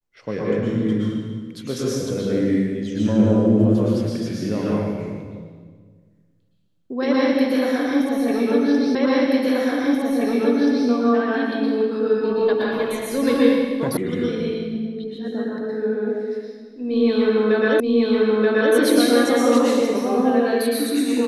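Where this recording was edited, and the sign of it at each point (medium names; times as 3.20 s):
8.95 s: repeat of the last 1.93 s
13.97 s: sound stops dead
17.80 s: repeat of the last 0.93 s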